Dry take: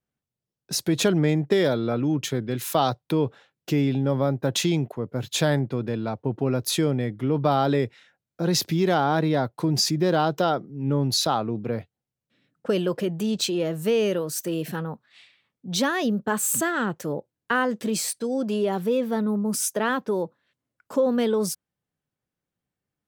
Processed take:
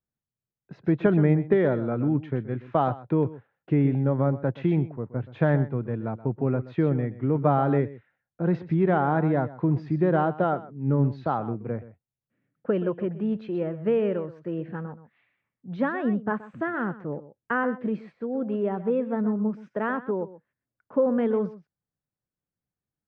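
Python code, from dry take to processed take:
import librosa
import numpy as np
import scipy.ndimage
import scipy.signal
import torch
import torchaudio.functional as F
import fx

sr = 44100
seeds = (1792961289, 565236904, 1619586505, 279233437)

y = scipy.signal.sosfilt(scipy.signal.butter(4, 2000.0, 'lowpass', fs=sr, output='sos'), x)
y = fx.low_shelf(y, sr, hz=130.0, db=7.0)
y = y + 10.0 ** (-12.5 / 20.0) * np.pad(y, (int(126 * sr / 1000.0), 0))[:len(y)]
y = fx.upward_expand(y, sr, threshold_db=-32.0, expansion=1.5)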